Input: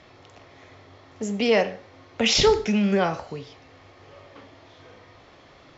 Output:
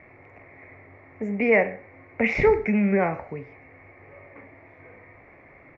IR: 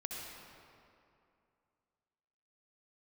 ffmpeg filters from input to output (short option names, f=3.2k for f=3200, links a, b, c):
-af "firequalizer=gain_entry='entry(660,0);entry(1400,-5);entry(2200,10);entry(3100,-28)':delay=0.05:min_phase=1"